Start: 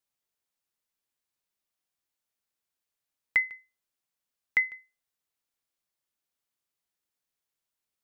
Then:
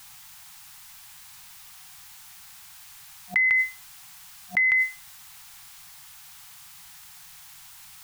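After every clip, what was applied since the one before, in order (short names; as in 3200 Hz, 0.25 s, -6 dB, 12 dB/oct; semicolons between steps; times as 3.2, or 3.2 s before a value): FFT band-reject 190–720 Hz; fast leveller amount 100%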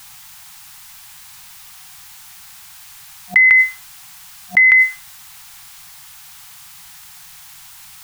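dynamic EQ 1600 Hz, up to +6 dB, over -35 dBFS, Q 1.4; gain +7 dB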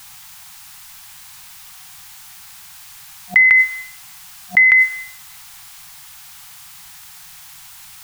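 reverb RT60 0.75 s, pre-delay 47 ms, DRR 13.5 dB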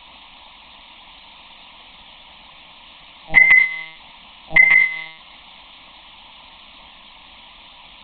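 monotone LPC vocoder at 8 kHz 160 Hz; fixed phaser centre 410 Hz, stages 6; gain +9 dB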